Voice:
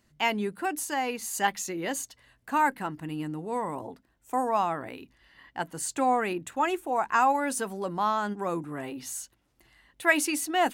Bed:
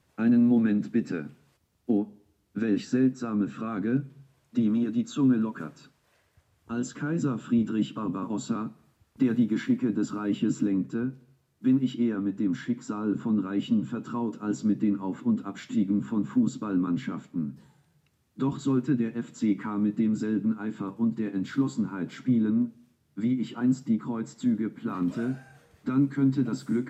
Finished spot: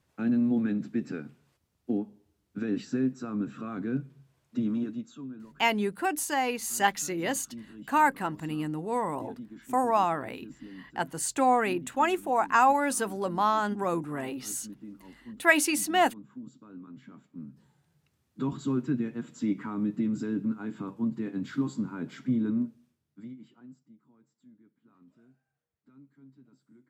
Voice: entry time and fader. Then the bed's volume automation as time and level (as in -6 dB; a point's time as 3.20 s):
5.40 s, +1.5 dB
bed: 4.84 s -4.5 dB
5.29 s -19.5 dB
16.93 s -19.5 dB
17.93 s -3.5 dB
22.67 s -3.5 dB
23.95 s -31.5 dB